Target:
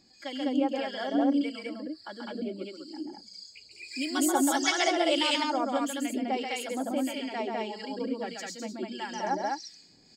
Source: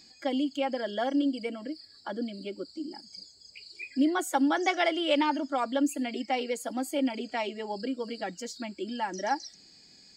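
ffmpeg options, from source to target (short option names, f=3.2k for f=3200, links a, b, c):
-filter_complex "[0:a]asettb=1/sr,asplit=3[a][b][c];[a]atrim=end=3.714[d];[b]atrim=start=3.71:end=5.58,asetpts=PTS-STARTPTS,afade=t=in:d=0.004:c=qsin,afade=t=out:st=1.866:d=0.004:c=qsin,bass=f=250:g=-1,treble=f=4k:g=14[e];[c]atrim=start=5.576[f];[d][e]acrossfade=d=0.004:c1=hsin:c2=qsin[g];[g][f]acrossfade=d=0.004:c1=qsin:c2=hsin,asplit=2[h][i];[i]aecho=0:1:134.1|204.1:0.631|0.891[j];[h][j]amix=inputs=2:normalize=0,acrossover=split=1200[k][l];[k]aeval=exprs='val(0)*(1-0.7/2+0.7/2*cos(2*PI*1.6*n/s))':c=same[m];[l]aeval=exprs='val(0)*(1-0.7/2-0.7/2*cos(2*PI*1.6*n/s))':c=same[n];[m][n]amix=inputs=2:normalize=0"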